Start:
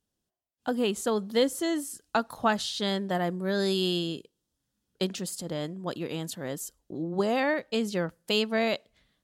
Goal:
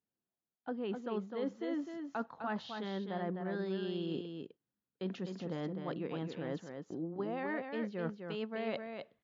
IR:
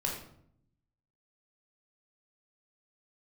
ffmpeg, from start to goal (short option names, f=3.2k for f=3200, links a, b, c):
-af "agate=range=-12dB:threshold=-51dB:ratio=16:detection=peak,bandreject=f=610:w=12,areverse,acompressor=threshold=-38dB:ratio=12,areverse,highpass=130,lowpass=2k,aecho=1:1:255:0.501,volume=3.5dB" -ar 16000 -c:a wmav2 -b:a 128k